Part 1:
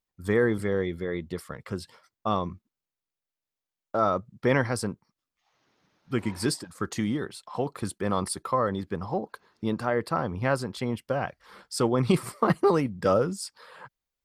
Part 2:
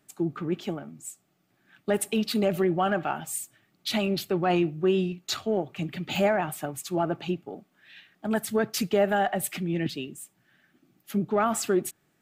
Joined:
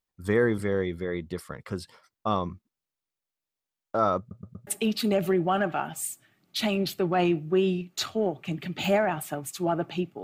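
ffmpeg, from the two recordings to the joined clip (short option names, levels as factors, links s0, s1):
-filter_complex "[0:a]apad=whole_dur=10.23,atrim=end=10.23,asplit=4[s0][s1][s2][s3];[s0]atrim=end=4.312[s4];[s1]atrim=start=4.188:end=4.312[s5];[s2]atrim=start=4.188:end=4.312[s6];[s3]atrim=start=4.188:end=4.312[s7];[1:a]atrim=start=1.978:end=7.54[s8];[s4][s5]acrossfade=d=0.004:c1=hsin:c2=hsin[s9];[s9][s6]acrossfade=d=0.004:c1=hsin:c2=hsin[s10];[s10][s7]acrossfade=d=0.004:c1=hsin:c2=hsin[s11];[s11][s8]acrossfade=d=0.004:c1=hsin:c2=hsin"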